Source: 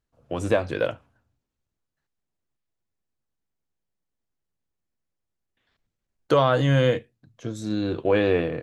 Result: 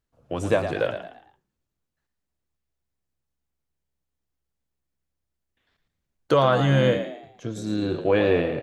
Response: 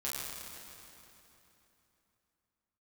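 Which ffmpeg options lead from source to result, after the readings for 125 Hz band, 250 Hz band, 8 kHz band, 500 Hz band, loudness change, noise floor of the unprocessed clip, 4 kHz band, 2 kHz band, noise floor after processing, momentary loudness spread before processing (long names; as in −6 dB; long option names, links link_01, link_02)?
0.0 dB, +1.0 dB, can't be measured, +0.5 dB, +0.5 dB, −83 dBFS, +0.5 dB, +0.5 dB, −82 dBFS, 13 LU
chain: -filter_complex "[0:a]asplit=5[link_01][link_02][link_03][link_04][link_05];[link_02]adelay=112,afreqshift=67,volume=-9.5dB[link_06];[link_03]adelay=224,afreqshift=134,volume=-18.4dB[link_07];[link_04]adelay=336,afreqshift=201,volume=-27.2dB[link_08];[link_05]adelay=448,afreqshift=268,volume=-36.1dB[link_09];[link_01][link_06][link_07][link_08][link_09]amix=inputs=5:normalize=0"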